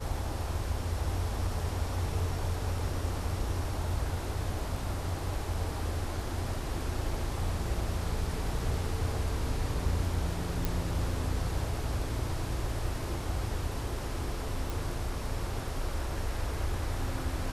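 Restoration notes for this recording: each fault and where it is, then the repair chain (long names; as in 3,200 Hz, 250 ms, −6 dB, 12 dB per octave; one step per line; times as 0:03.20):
0:10.65: click
0:14.70: click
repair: click removal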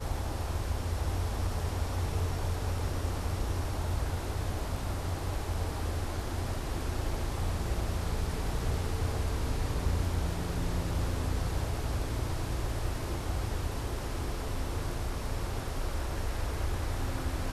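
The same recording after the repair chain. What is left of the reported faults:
none of them is left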